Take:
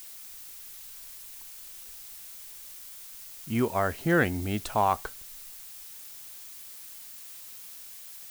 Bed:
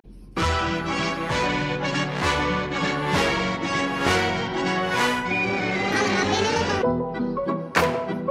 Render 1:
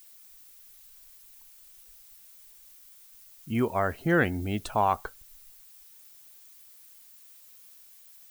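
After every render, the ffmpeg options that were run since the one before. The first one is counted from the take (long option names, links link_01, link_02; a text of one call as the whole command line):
ffmpeg -i in.wav -af "afftdn=noise_reduction=11:noise_floor=-45" out.wav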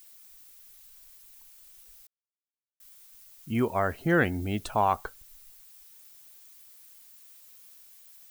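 ffmpeg -i in.wav -filter_complex "[0:a]asplit=3[link_01][link_02][link_03];[link_01]atrim=end=2.07,asetpts=PTS-STARTPTS,afade=type=out:start_time=2.066:duration=0.004:curve=hsin[link_04];[link_02]atrim=start=2.07:end=2.8,asetpts=PTS-STARTPTS,volume=0[link_05];[link_03]atrim=start=2.8,asetpts=PTS-STARTPTS,afade=type=in:duration=0.004:curve=hsin[link_06];[link_04][link_05][link_06]concat=n=3:v=0:a=1" out.wav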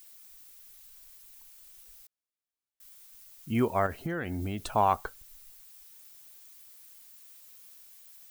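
ffmpeg -i in.wav -filter_complex "[0:a]asettb=1/sr,asplit=3[link_01][link_02][link_03];[link_01]atrim=end=3.864[link_04];[link_02]atrim=start=3.86:end=4.69,asetpts=PTS-STARTPTS,afade=type=in:duration=0.004:curve=qsin,afade=type=out:start_time=0.826:duration=0.004:curve=qsin,acompressor=threshold=-28dB:ratio=12:attack=3.2:release=140:knee=1:detection=peak[link_05];[link_03]atrim=start=4.686[link_06];[link_04][link_05]acrossfade=duration=0.004:curve1=hsin:curve2=qsin[link_07];[link_07][link_06]acrossfade=duration=0.004:curve1=qsin:curve2=hsin" out.wav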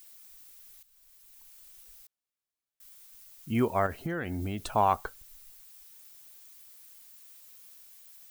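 ffmpeg -i in.wav -filter_complex "[0:a]asplit=2[link_01][link_02];[link_01]atrim=end=0.83,asetpts=PTS-STARTPTS,afade=type=out:start_time=0.826:duration=0.004:curve=hsin:silence=0.199526[link_03];[link_02]atrim=start=0.83,asetpts=PTS-STARTPTS,afade=type=in:duration=0.72:silence=0.199526[link_04];[link_03][link_04]concat=n=2:v=0:a=1" out.wav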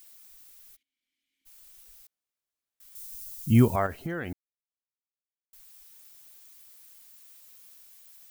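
ffmpeg -i in.wav -filter_complex "[0:a]asplit=3[link_01][link_02][link_03];[link_01]afade=type=out:start_time=0.75:duration=0.02[link_04];[link_02]asplit=3[link_05][link_06][link_07];[link_05]bandpass=frequency=270:width_type=q:width=8,volume=0dB[link_08];[link_06]bandpass=frequency=2290:width_type=q:width=8,volume=-6dB[link_09];[link_07]bandpass=frequency=3010:width_type=q:width=8,volume=-9dB[link_10];[link_08][link_09][link_10]amix=inputs=3:normalize=0,afade=type=in:start_time=0.75:duration=0.02,afade=type=out:start_time=1.45:duration=0.02[link_11];[link_03]afade=type=in:start_time=1.45:duration=0.02[link_12];[link_04][link_11][link_12]amix=inputs=3:normalize=0,asettb=1/sr,asplit=3[link_13][link_14][link_15];[link_13]atrim=end=2.954[link_16];[link_14]atrim=start=2.95:end=3.76,asetpts=PTS-STARTPTS,afade=type=in:duration=0.004:curve=qsin,afade=type=out:start_time=0.806:duration=0.004:curve=qsin,bass=frequency=250:gain=14,treble=frequency=4000:gain=11[link_17];[link_15]atrim=start=3.756[link_18];[link_16][link_17]acrossfade=duration=0.004:curve1=hsin:curve2=qsin[link_19];[link_19][link_18]acrossfade=duration=0.004:curve1=qsin:curve2=hsin,asplit=3[link_20][link_21][link_22];[link_20]atrim=end=4.33,asetpts=PTS-STARTPTS,afade=type=out:start_time=4.326:duration=0.004:curve=hsin[link_23];[link_21]atrim=start=4.33:end=5.53,asetpts=PTS-STARTPTS,volume=0[link_24];[link_22]atrim=start=5.53,asetpts=PTS-STARTPTS,afade=type=in:duration=0.004:curve=hsin[link_25];[link_23][link_24][link_25]concat=n=3:v=0:a=1" out.wav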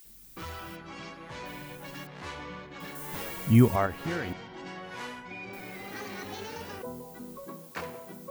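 ffmpeg -i in.wav -i bed.wav -filter_complex "[1:a]volume=-18dB[link_01];[0:a][link_01]amix=inputs=2:normalize=0" out.wav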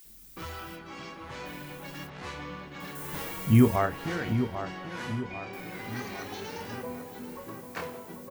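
ffmpeg -i in.wav -filter_complex "[0:a]asplit=2[link_01][link_02];[link_02]adelay=28,volume=-9dB[link_03];[link_01][link_03]amix=inputs=2:normalize=0,asplit=2[link_04][link_05];[link_05]adelay=792,lowpass=frequency=2500:poles=1,volume=-9dB,asplit=2[link_06][link_07];[link_07]adelay=792,lowpass=frequency=2500:poles=1,volume=0.52,asplit=2[link_08][link_09];[link_09]adelay=792,lowpass=frequency=2500:poles=1,volume=0.52,asplit=2[link_10][link_11];[link_11]adelay=792,lowpass=frequency=2500:poles=1,volume=0.52,asplit=2[link_12][link_13];[link_13]adelay=792,lowpass=frequency=2500:poles=1,volume=0.52,asplit=2[link_14][link_15];[link_15]adelay=792,lowpass=frequency=2500:poles=1,volume=0.52[link_16];[link_04][link_06][link_08][link_10][link_12][link_14][link_16]amix=inputs=7:normalize=0" out.wav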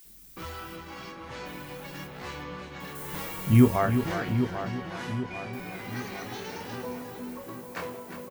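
ffmpeg -i in.wav -filter_complex "[0:a]asplit=2[link_01][link_02];[link_02]adelay=16,volume=-11dB[link_03];[link_01][link_03]amix=inputs=2:normalize=0,asplit=2[link_04][link_05];[link_05]aecho=0:1:355:0.355[link_06];[link_04][link_06]amix=inputs=2:normalize=0" out.wav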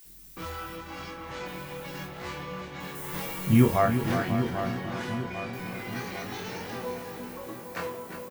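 ffmpeg -i in.wav -filter_complex "[0:a]asplit=2[link_01][link_02];[link_02]adelay=22,volume=-5dB[link_03];[link_01][link_03]amix=inputs=2:normalize=0,asplit=2[link_04][link_05];[link_05]aecho=0:1:541|1082|1623|2164:0.237|0.0972|0.0399|0.0163[link_06];[link_04][link_06]amix=inputs=2:normalize=0" out.wav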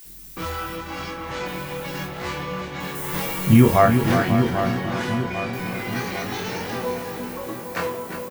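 ffmpeg -i in.wav -af "volume=8dB,alimiter=limit=-3dB:level=0:latency=1" out.wav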